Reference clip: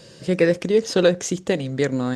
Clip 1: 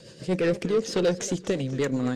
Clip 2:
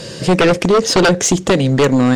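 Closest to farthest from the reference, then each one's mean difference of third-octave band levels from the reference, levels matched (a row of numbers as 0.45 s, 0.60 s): 1, 2; 3.0 dB, 5.5 dB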